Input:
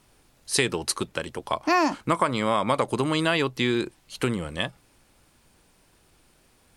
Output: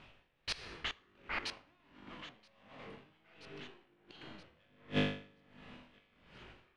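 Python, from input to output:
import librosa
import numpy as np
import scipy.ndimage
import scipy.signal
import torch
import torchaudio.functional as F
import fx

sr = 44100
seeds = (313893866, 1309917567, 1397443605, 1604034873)

p1 = fx.halfwave_hold(x, sr)
p2 = fx.hum_notches(p1, sr, base_hz=50, count=9)
p3 = fx.rider(p2, sr, range_db=3, speed_s=0.5)
p4 = p2 + (p3 * 10.0 ** (-3.0 / 20.0))
p5 = fx.leveller(p4, sr, passes=5)
p6 = fx.level_steps(p5, sr, step_db=21)
p7 = fx.lowpass_res(p6, sr, hz=2900.0, q=2.4)
p8 = fx.comb_fb(p7, sr, f0_hz=50.0, decay_s=1.1, harmonics='all', damping=0.0, mix_pct=90)
p9 = fx.gate_flip(p8, sr, shuts_db=-28.0, range_db=-37)
p10 = p9 + fx.echo_thinned(p9, sr, ms=976, feedback_pct=49, hz=600.0, wet_db=-15.5, dry=0)
p11 = fx.echo_pitch(p10, sr, ms=169, semitones=-6, count=2, db_per_echo=-6.0)
p12 = fx.rev_plate(p11, sr, seeds[0], rt60_s=2.1, hf_ratio=0.35, predelay_ms=0, drr_db=14.0)
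p13 = p12 * 10.0 ** (-21 * (0.5 - 0.5 * np.cos(2.0 * np.pi * 1.4 * np.arange(len(p12)) / sr)) / 20.0)
y = p13 * 10.0 ** (17.5 / 20.0)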